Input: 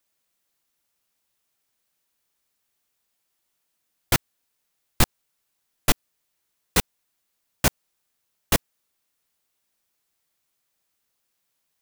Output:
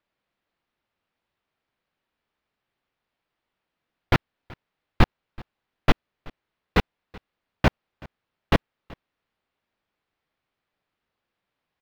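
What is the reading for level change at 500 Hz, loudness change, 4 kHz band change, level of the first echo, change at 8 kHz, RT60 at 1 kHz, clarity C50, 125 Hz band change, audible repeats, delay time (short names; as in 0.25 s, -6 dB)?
+3.0 dB, -1.0 dB, -5.0 dB, -23.5 dB, -22.0 dB, none, none, +4.0 dB, 1, 0.378 s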